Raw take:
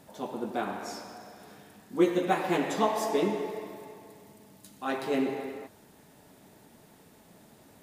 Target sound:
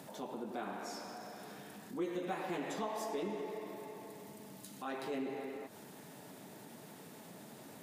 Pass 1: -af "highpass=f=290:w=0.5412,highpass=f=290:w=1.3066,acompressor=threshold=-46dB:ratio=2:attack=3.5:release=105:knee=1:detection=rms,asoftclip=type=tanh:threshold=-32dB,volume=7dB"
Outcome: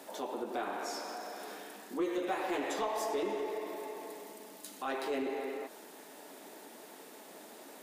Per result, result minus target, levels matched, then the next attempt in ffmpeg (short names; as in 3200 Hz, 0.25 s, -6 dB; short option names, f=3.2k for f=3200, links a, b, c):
125 Hz band -15.0 dB; compressor: peak gain reduction -6.5 dB
-af "highpass=f=120:w=0.5412,highpass=f=120:w=1.3066,acompressor=threshold=-46dB:ratio=2:attack=3.5:release=105:knee=1:detection=rms,asoftclip=type=tanh:threshold=-32dB,volume=7dB"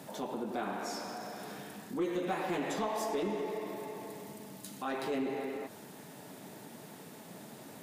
compressor: peak gain reduction -6 dB
-af "highpass=f=120:w=0.5412,highpass=f=120:w=1.3066,acompressor=threshold=-57.5dB:ratio=2:attack=3.5:release=105:knee=1:detection=rms,asoftclip=type=tanh:threshold=-32dB,volume=7dB"